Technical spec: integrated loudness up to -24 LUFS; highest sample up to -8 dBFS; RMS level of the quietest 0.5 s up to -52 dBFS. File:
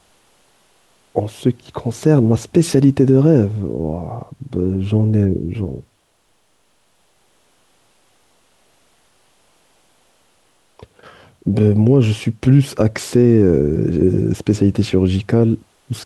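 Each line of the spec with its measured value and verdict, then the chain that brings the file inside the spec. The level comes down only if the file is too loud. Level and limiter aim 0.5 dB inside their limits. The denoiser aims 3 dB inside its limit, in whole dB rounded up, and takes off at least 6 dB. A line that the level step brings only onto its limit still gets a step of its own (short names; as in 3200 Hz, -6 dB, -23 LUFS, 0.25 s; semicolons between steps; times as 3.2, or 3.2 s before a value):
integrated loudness -16.5 LUFS: fail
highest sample -2.0 dBFS: fail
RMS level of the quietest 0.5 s -61 dBFS: OK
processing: gain -8 dB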